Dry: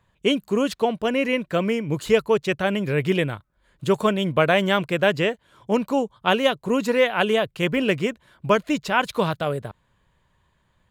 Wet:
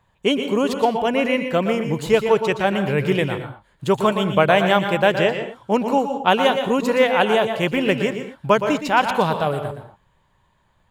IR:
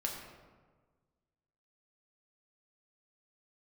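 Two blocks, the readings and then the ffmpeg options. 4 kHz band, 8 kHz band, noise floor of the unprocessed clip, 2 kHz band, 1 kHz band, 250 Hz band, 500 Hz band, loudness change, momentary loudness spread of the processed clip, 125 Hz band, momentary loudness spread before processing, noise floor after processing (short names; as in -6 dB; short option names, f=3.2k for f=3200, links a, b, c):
+2.0 dB, +1.5 dB, -67 dBFS, +2.5 dB, +6.0 dB, +2.0 dB, +3.0 dB, +3.0 dB, 7 LU, +2.0 dB, 7 LU, -63 dBFS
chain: -filter_complex "[0:a]equalizer=f=830:t=o:w=0.53:g=6.5,asplit=2[a][b];[1:a]atrim=start_sample=2205,afade=t=out:st=0.18:d=0.01,atrim=end_sample=8379,adelay=118[c];[b][c]afir=irnorm=-1:irlink=0,volume=-8dB[d];[a][d]amix=inputs=2:normalize=0,volume=1dB"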